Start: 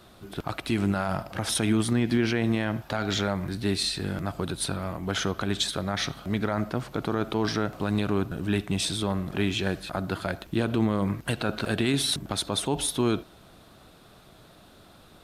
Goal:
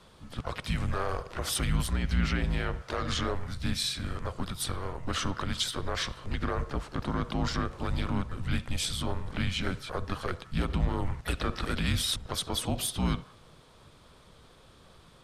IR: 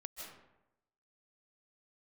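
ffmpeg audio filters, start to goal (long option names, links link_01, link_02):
-filter_complex "[0:a]aresample=22050,aresample=44100,afreqshift=-180,asplit=2[link_01][link_02];[link_02]highpass=frequency=980:width_type=q:width=2.3[link_03];[1:a]atrim=start_sample=2205,afade=type=out:start_time=0.27:duration=0.01,atrim=end_sample=12348,lowpass=2200[link_04];[link_03][link_04]afir=irnorm=-1:irlink=0,volume=-17dB[link_05];[link_01][link_05]amix=inputs=2:normalize=0,asplit=2[link_06][link_07];[link_07]asetrate=58866,aresample=44100,atempo=0.749154,volume=-8dB[link_08];[link_06][link_08]amix=inputs=2:normalize=0,volume=-3.5dB"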